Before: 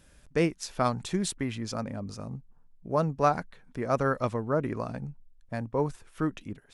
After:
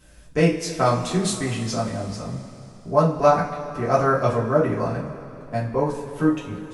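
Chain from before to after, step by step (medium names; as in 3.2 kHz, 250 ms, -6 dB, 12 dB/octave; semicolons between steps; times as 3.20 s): two-slope reverb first 0.29 s, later 3.3 s, from -18 dB, DRR -7 dB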